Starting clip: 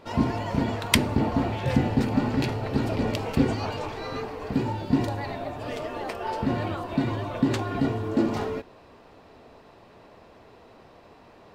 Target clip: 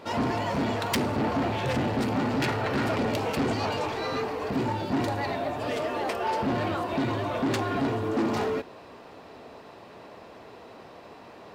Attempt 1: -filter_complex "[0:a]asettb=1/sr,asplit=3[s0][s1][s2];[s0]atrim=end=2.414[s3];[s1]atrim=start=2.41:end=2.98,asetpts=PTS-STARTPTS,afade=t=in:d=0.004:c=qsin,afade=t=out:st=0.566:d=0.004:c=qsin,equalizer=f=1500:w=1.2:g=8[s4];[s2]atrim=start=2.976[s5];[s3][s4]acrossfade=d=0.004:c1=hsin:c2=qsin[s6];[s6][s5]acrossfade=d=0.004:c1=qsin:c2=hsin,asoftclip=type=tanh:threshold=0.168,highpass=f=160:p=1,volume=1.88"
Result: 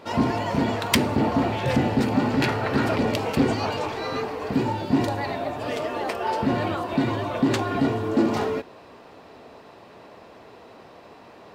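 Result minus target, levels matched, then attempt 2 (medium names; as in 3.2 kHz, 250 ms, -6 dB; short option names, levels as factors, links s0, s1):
saturation: distortion -9 dB
-filter_complex "[0:a]asettb=1/sr,asplit=3[s0][s1][s2];[s0]atrim=end=2.414[s3];[s1]atrim=start=2.41:end=2.98,asetpts=PTS-STARTPTS,afade=t=in:d=0.004:c=qsin,afade=t=out:st=0.566:d=0.004:c=qsin,equalizer=f=1500:w=1.2:g=8[s4];[s2]atrim=start=2.976[s5];[s3][s4]acrossfade=d=0.004:c1=hsin:c2=qsin[s6];[s6][s5]acrossfade=d=0.004:c1=qsin:c2=hsin,asoftclip=type=tanh:threshold=0.0473,highpass=f=160:p=1,volume=1.88"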